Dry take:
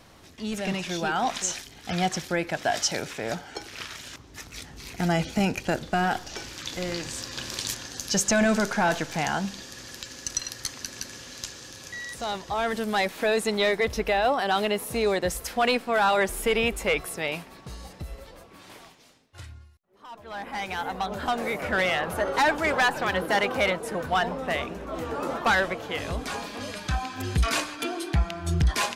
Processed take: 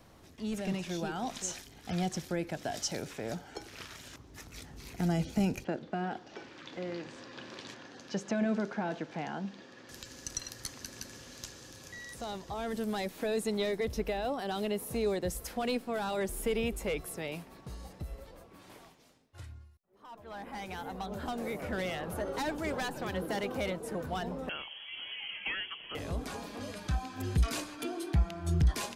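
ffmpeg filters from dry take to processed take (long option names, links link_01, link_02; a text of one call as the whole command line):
ffmpeg -i in.wav -filter_complex "[0:a]asettb=1/sr,asplit=3[link_01][link_02][link_03];[link_01]atrim=end=5.644[link_04];[link_02]atrim=start=5.64:end=9.89,asetpts=PTS-STARTPTS,afade=type=in:duration=0.004:curve=qsin,afade=type=out:start_time=4.246:duration=0.004:curve=qsin,highpass=210,lowpass=2900[link_05];[link_03]atrim=start=9.886[link_06];[link_04][link_05]acrossfade=duration=0.004:curve1=hsin:curve2=qsin[link_07];[link_07][link_06]acrossfade=duration=0.004:curve1=qsin:curve2=hsin,asettb=1/sr,asplit=3[link_08][link_09][link_10];[link_08]atrim=end=24.494[link_11];[link_09]atrim=start=24.49:end=25.95,asetpts=PTS-STARTPTS,afade=type=in:duration=0.004:curve=qsin,afade=type=out:start_time=1.456:duration=0.004:curve=qsin,lowpass=frequency=2900:width_type=q:width=0.5098,lowpass=frequency=2900:width_type=q:width=0.6013,lowpass=frequency=2900:width_type=q:width=0.9,lowpass=frequency=2900:width_type=q:width=2.563,afreqshift=-3400[link_12];[link_10]atrim=start=25.946[link_13];[link_11][link_12]acrossfade=duration=0.004:curve1=hsin:curve2=qsin[link_14];[link_14][link_13]acrossfade=duration=0.004:curve1=qsin:curve2=hsin,acrossover=split=460|3000[link_15][link_16][link_17];[link_16]acompressor=threshold=-38dB:ratio=2[link_18];[link_15][link_18][link_17]amix=inputs=3:normalize=0,equalizer=frequency=3600:width=0.3:gain=-6,volume=-3.5dB" out.wav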